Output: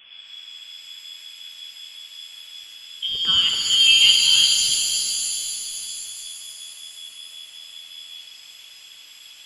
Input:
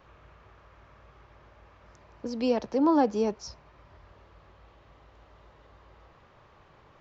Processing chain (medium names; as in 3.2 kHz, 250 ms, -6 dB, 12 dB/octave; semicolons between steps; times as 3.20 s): bass shelf 73 Hz +11 dB; speed mistake 45 rpm record played at 33 rpm; frequency inversion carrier 3.4 kHz; pitch-shifted reverb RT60 3.3 s, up +7 st, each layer -2 dB, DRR 2.5 dB; trim +5.5 dB